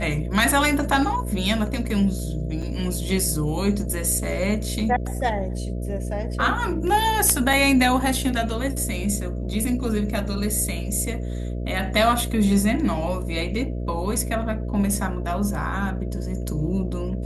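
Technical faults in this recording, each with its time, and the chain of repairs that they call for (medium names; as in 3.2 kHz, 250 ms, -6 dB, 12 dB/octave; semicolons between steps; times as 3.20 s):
buzz 60 Hz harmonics 11 -28 dBFS
2.62 s: dropout 4.6 ms
7.53 s: dropout 3.2 ms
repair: de-hum 60 Hz, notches 11; interpolate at 2.62 s, 4.6 ms; interpolate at 7.53 s, 3.2 ms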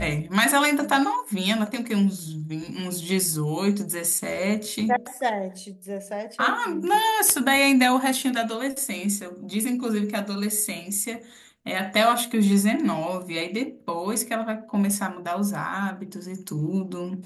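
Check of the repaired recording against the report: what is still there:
nothing left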